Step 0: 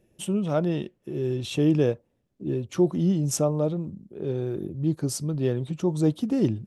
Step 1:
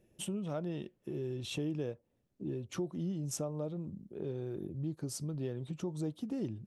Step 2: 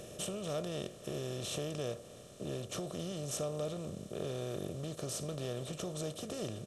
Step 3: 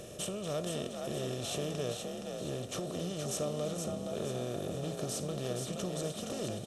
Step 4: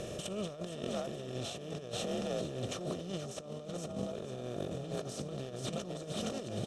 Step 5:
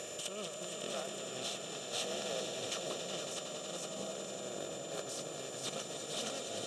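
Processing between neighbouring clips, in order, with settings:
compressor 3:1, threshold -33 dBFS, peak gain reduction 13 dB; gain -4 dB
per-bin compression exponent 0.4; bell 180 Hz -4.5 dB 1.8 oct; comb 1.7 ms, depth 51%; gain -3.5 dB
frequency-shifting echo 0.47 s, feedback 41%, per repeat +47 Hz, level -5 dB; gain +1.5 dB
negative-ratio compressor -40 dBFS, ratio -0.5; air absorption 54 m; gain +2 dB
whine 7100 Hz -51 dBFS; HPF 1000 Hz 6 dB/oct; swelling echo 92 ms, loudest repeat 5, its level -11 dB; gain +2.5 dB

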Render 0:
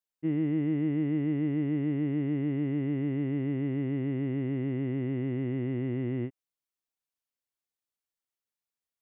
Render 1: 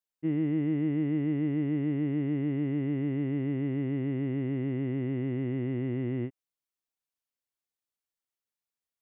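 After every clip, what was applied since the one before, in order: nothing audible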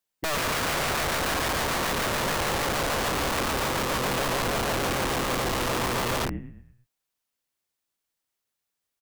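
frequency-shifting echo 0.112 s, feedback 43%, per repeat -50 Hz, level -9 dB; wrapped overs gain 30 dB; gain +8 dB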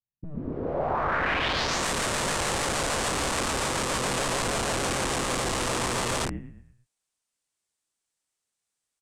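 low-pass sweep 120 Hz -> 8500 Hz, 0.11–1.87; gain -1.5 dB

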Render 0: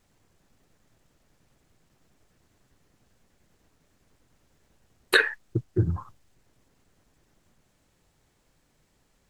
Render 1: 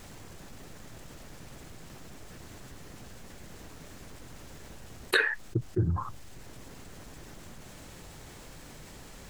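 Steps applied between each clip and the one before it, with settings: fast leveller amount 50%; gain -6 dB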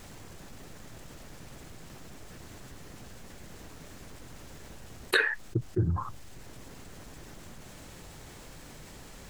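nothing audible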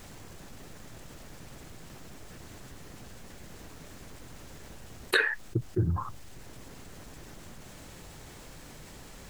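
added noise white -68 dBFS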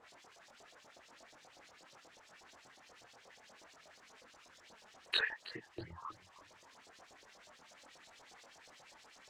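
LFO band-pass saw up 8.3 Hz 590–6400 Hz; chorus voices 4, 0.75 Hz, delay 24 ms, depth 2.4 ms; warbling echo 0.316 s, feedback 31%, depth 168 cents, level -16.5 dB; gain +2.5 dB

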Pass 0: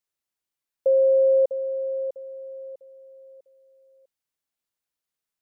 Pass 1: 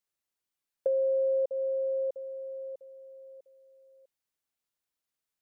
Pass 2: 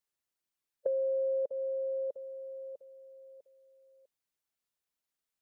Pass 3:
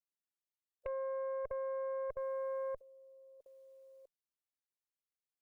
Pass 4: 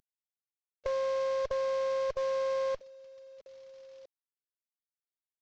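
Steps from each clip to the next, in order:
compressor 4:1, threshold -25 dBFS, peak gain reduction 7.5 dB; gain -1.5 dB
harmonic-percussive split harmonic -4 dB
level quantiser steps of 22 dB; added harmonics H 4 -13 dB, 5 -18 dB, 7 -36 dB, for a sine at -34.5 dBFS; gain +3.5 dB
CVSD 32 kbps; gain +8 dB

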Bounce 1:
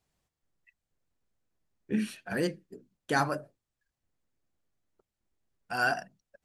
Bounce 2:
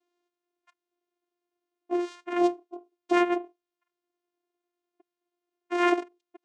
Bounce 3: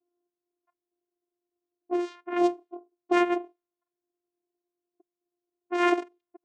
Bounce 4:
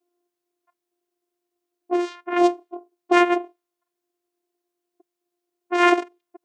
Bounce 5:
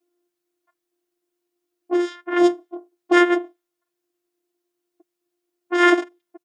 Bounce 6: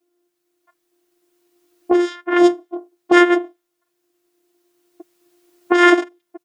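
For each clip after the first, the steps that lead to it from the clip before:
vocoder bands 4, saw 351 Hz; gain +5.5 dB
low-pass opened by the level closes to 580 Hz, open at -23.5 dBFS
low shelf 260 Hz -9.5 dB; gain +8.5 dB
comb 6.3 ms, depth 74%
recorder AGC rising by 7.9 dB/s; gain +3.5 dB

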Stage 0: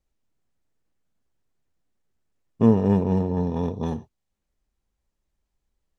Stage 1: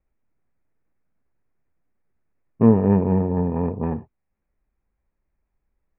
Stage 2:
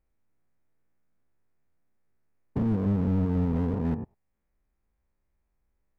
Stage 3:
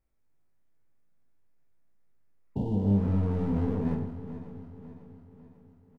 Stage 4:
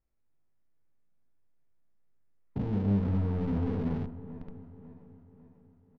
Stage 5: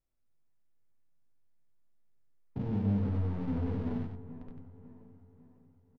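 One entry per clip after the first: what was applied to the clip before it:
steep low-pass 2500 Hz 72 dB/oct; gain +2.5 dB
stepped spectrum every 0.1 s; compressor 4:1, threshold -19 dBFS, peak gain reduction 8.5 dB; slew limiter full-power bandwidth 16 Hz
regenerating reverse delay 0.274 s, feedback 69%, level -13 dB; reverse bouncing-ball echo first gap 20 ms, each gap 1.5×, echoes 5; spectral repair 2.46–3.02, 1000–2700 Hz both; gain -3.5 dB
in parallel at -5.5 dB: Schmitt trigger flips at -32 dBFS; on the sum: air absorption 240 m; gain -3.5 dB
flange 0.89 Hz, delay 7.6 ms, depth 1.5 ms, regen -42%; on a send: echo 94 ms -6.5 dB

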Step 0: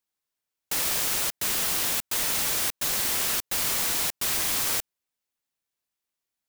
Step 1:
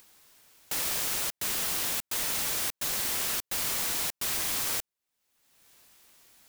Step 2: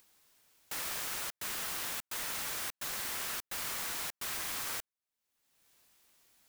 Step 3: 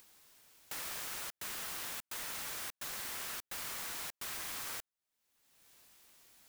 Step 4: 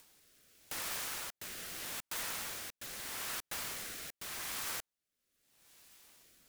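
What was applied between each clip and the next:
upward compressor, threshold -30 dBFS; gain -4 dB
dynamic EQ 1400 Hz, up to +6 dB, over -50 dBFS, Q 0.81; gain -8.5 dB
compressor 1.5:1, threshold -59 dBFS, peak gain reduction 9 dB; gain +4.5 dB
rotary speaker horn 0.8 Hz; gain +3.5 dB

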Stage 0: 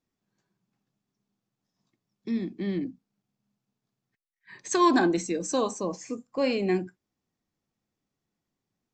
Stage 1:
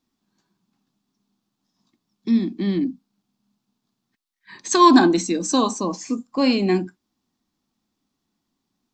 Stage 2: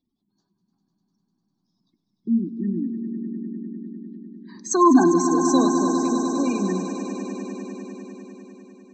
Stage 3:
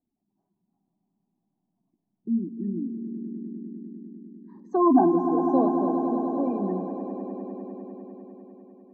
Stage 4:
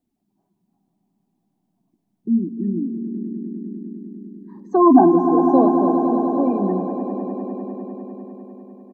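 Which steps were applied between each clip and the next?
graphic EQ 125/250/500/1000/2000/4000 Hz -7/+8/-7/+5/-4/+6 dB; gain +6 dB
spectral gate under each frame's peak -20 dB strong; phaser stages 4, 0.25 Hz, lowest notch 600–3200 Hz; swelling echo 0.1 s, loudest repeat 5, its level -11.5 dB; gain -2 dB
synth low-pass 710 Hz, resonance Q 3.5; gain -5.5 dB
feedback echo 0.52 s, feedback 49%, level -19 dB; gain +7 dB

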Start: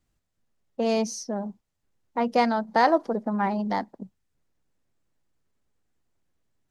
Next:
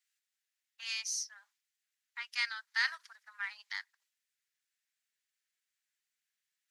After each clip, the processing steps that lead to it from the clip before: steep high-pass 1600 Hz 36 dB/oct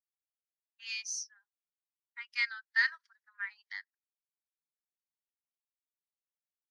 spectral expander 1.5:1; gain +2 dB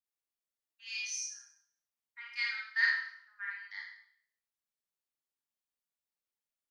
Schroeder reverb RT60 0.61 s, combs from 27 ms, DRR -3.5 dB; gain -5 dB

